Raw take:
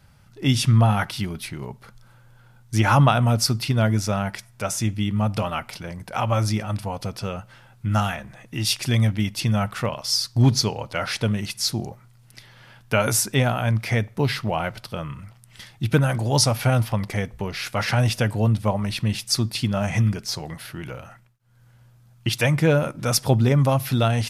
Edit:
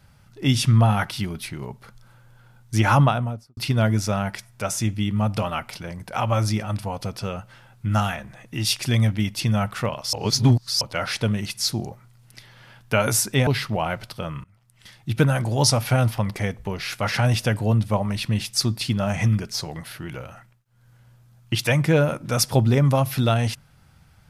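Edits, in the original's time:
0:02.90–0:03.57: fade out and dull
0:10.13–0:10.81: reverse
0:13.47–0:14.21: remove
0:15.18–0:15.96: fade in, from −23.5 dB

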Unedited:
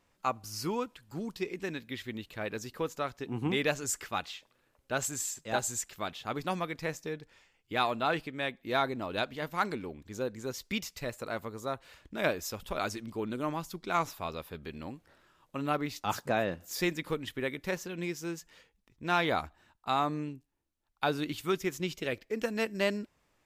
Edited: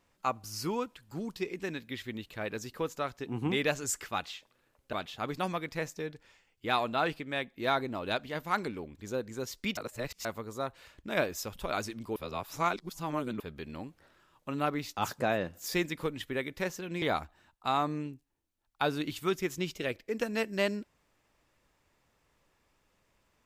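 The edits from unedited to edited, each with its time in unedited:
0:04.93–0:06.00: remove
0:10.84–0:11.32: reverse
0:13.23–0:14.47: reverse
0:18.09–0:19.24: remove

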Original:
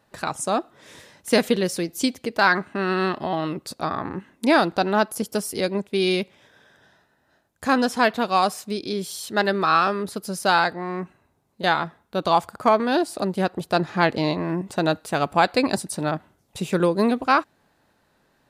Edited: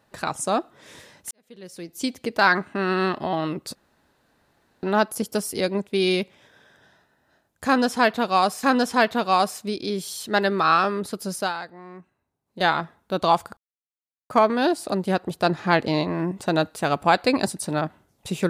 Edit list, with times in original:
0:01.31–0:02.25: fade in quadratic
0:03.75–0:04.83: fill with room tone
0:07.66–0:08.63: repeat, 2 plays
0:10.38–0:11.66: duck −13 dB, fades 0.18 s
0:12.60: splice in silence 0.73 s

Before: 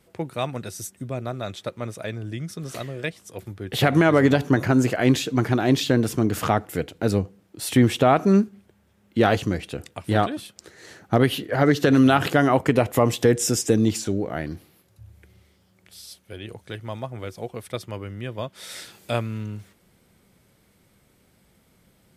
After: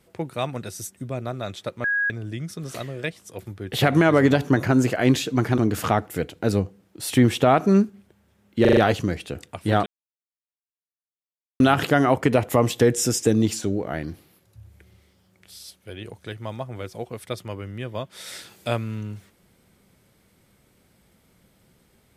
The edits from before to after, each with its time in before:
0:01.84–0:02.10: beep over 1,650 Hz −19.5 dBFS
0:05.58–0:06.17: remove
0:09.20: stutter 0.04 s, 5 plays
0:10.29–0:12.03: silence

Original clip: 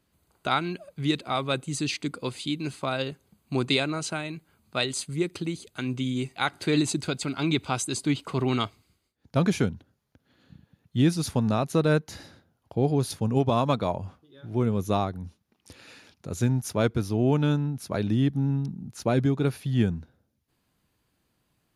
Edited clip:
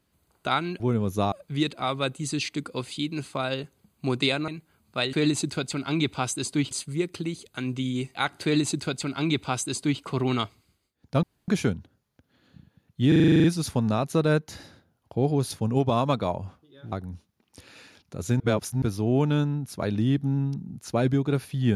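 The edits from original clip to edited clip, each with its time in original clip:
0:03.96–0:04.27: remove
0:06.64–0:08.22: duplicate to 0:04.92
0:09.44: splice in room tone 0.25 s
0:11.04: stutter 0.04 s, 10 plays
0:14.52–0:15.04: move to 0:00.80
0:16.52–0:16.94: reverse

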